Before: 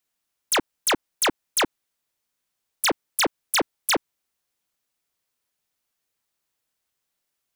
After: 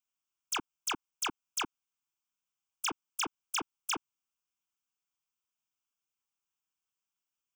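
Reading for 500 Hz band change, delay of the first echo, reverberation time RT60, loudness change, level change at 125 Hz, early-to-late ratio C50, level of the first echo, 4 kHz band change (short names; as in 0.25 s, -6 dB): -20.0 dB, none, none, -12.0 dB, -14.5 dB, none, none, -12.0 dB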